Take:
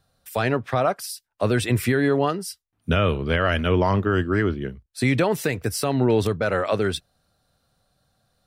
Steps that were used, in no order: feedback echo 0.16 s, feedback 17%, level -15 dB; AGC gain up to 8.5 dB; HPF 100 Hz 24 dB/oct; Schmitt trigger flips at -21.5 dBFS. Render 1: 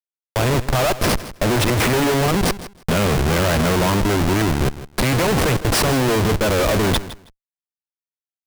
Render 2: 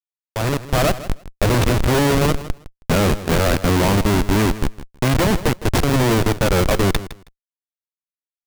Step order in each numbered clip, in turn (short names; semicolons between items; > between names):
AGC > HPF > Schmitt trigger > feedback echo; HPF > Schmitt trigger > AGC > feedback echo